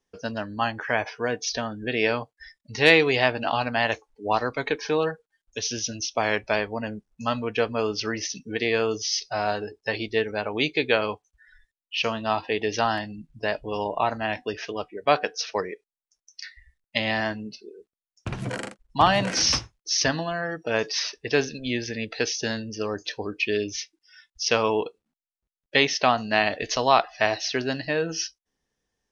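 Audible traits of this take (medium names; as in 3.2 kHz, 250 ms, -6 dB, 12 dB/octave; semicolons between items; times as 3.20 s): noise floor -94 dBFS; spectral tilt -3.0 dB/octave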